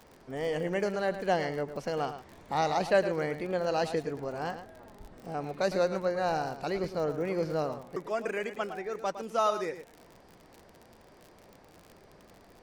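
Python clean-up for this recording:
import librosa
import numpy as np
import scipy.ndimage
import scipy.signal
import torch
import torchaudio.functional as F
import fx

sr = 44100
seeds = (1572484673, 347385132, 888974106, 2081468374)

y = fx.fix_declick_ar(x, sr, threshold=6.5)
y = fx.fix_echo_inverse(y, sr, delay_ms=109, level_db=-11.0)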